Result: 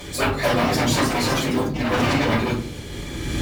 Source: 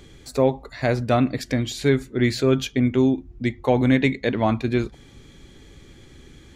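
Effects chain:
mu-law and A-law mismatch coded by mu
low-shelf EQ 160 Hz −4.5 dB
time stretch by phase vocoder 0.52×
sine wavefolder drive 15 dB, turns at −8.5 dBFS
high-pass filter 57 Hz 12 dB per octave
high-shelf EQ 8,300 Hz +7.5 dB
mains-hum notches 60/120 Hz
rectangular room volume 240 cubic metres, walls furnished, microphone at 5.9 metres
delay with pitch and tempo change per echo 325 ms, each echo +4 semitones, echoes 3, each echo −6 dB
automatic gain control
level −7 dB

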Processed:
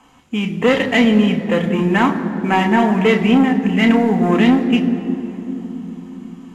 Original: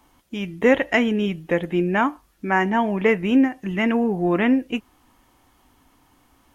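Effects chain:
variable-slope delta modulation 64 kbit/s
soft clipping −18 dBFS, distortion −10 dB
convolution reverb RT60 3.6 s, pre-delay 3 ms, DRR 4.5 dB
level +1 dB

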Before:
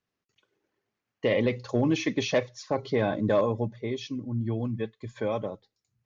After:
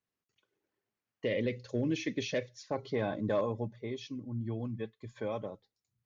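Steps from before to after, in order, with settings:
0:01.25–0:02.71: flat-topped bell 940 Hz −11.5 dB 1.1 octaves
level −7 dB

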